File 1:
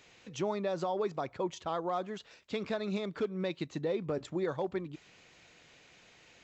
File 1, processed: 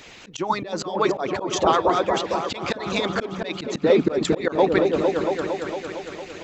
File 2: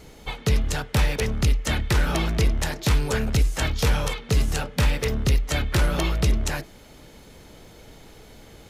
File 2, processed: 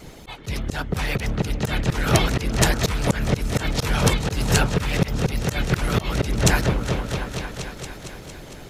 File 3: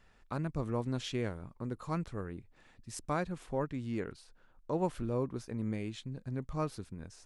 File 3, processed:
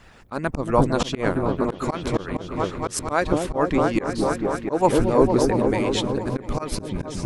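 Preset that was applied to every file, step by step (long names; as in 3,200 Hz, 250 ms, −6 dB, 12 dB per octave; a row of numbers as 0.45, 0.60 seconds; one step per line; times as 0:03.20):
harmonic and percussive parts rebalanced harmonic −17 dB
echo whose low-pass opens from repeat to repeat 228 ms, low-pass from 400 Hz, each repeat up 1 octave, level −3 dB
volume swells 171 ms
loudness normalisation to −23 LKFS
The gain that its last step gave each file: +20.5, +10.0, +21.5 decibels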